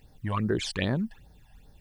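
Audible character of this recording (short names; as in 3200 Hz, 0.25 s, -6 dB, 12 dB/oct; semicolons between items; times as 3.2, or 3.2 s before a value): a quantiser's noise floor 12-bit, dither triangular; phasing stages 12, 2.5 Hz, lowest notch 380–2800 Hz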